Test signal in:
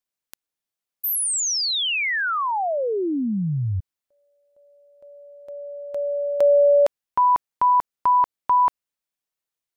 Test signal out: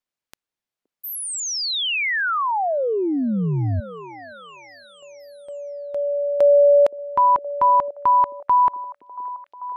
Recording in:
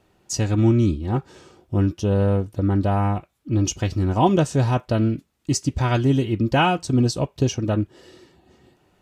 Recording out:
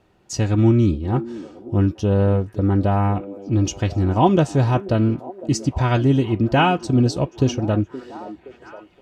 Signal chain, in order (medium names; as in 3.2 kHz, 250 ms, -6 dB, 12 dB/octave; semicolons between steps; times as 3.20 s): treble shelf 6.4 kHz -10.5 dB; repeats whose band climbs or falls 520 ms, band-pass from 330 Hz, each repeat 0.7 oct, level -12 dB; trim +2 dB